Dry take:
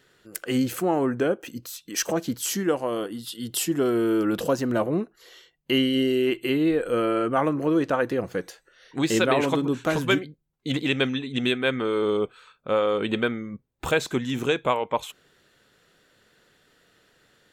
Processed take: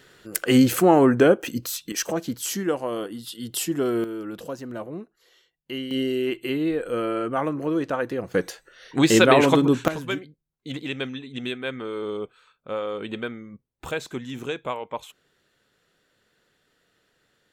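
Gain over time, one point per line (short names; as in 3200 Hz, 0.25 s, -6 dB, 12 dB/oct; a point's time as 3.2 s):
+7.5 dB
from 1.92 s -1 dB
from 4.04 s -10 dB
from 5.91 s -2.5 dB
from 8.34 s +6 dB
from 9.88 s -6.5 dB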